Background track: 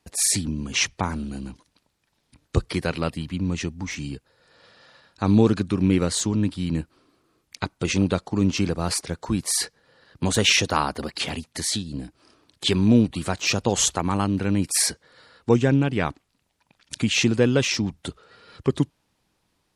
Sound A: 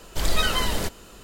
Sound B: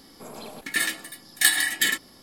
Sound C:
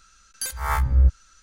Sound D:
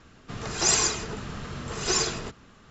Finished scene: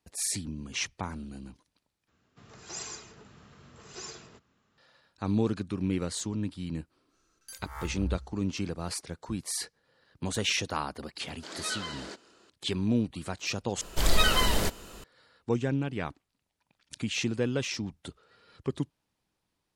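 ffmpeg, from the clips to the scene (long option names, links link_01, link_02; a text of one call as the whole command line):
ffmpeg -i bed.wav -i cue0.wav -i cue1.wav -i cue2.wav -i cue3.wav -filter_complex "[1:a]asplit=2[link_01][link_02];[0:a]volume=-10dB[link_03];[4:a]highpass=65[link_04];[3:a]aecho=1:1:93|186|279|372:0.133|0.0693|0.0361|0.0188[link_05];[link_01]highpass=frequency=210:width=0.5412,highpass=frequency=210:width=1.3066,equalizer=frequency=340:width_type=q:width=4:gain=5,equalizer=frequency=1500:width_type=q:width=4:gain=6,equalizer=frequency=4500:width_type=q:width=4:gain=5,lowpass=frequency=7700:width=0.5412,lowpass=frequency=7700:width=1.3066[link_06];[link_03]asplit=3[link_07][link_08][link_09];[link_07]atrim=end=2.084[link_10];[link_04]atrim=end=2.7,asetpts=PTS-STARTPTS,volume=-17.5dB[link_11];[link_08]atrim=start=4.776:end=13.814[link_12];[link_02]atrim=end=1.23,asetpts=PTS-STARTPTS,volume=-0.5dB[link_13];[link_09]atrim=start=15.036[link_14];[link_05]atrim=end=1.42,asetpts=PTS-STARTPTS,volume=-17dB,afade=type=in:duration=0.1,afade=type=out:start_time=1.32:duration=0.1,adelay=7070[link_15];[link_06]atrim=end=1.23,asetpts=PTS-STARTPTS,volume=-14dB,afade=type=in:duration=0.004:curve=hsin,afade=type=out:start_time=1.226:duration=0.004:curve=hsin,adelay=11270[link_16];[link_10][link_11]acrossfade=duration=0.004:curve1=hsin:curve2=hsin[link_17];[link_17][link_12]acrossfade=duration=0.004:curve1=hsin:curve2=hsin[link_18];[link_18][link_13]acrossfade=duration=0.004:curve1=hsin:curve2=hsin[link_19];[link_19][link_14]acrossfade=duration=0.004:curve1=hsin:curve2=hsin[link_20];[link_20][link_15][link_16]amix=inputs=3:normalize=0" out.wav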